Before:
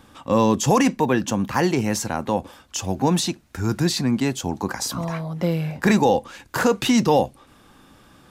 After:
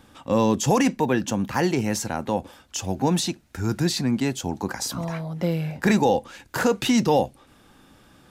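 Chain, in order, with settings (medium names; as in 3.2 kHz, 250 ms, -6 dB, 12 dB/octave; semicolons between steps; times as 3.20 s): peaking EQ 1.1 kHz -5 dB 0.23 oct; trim -2 dB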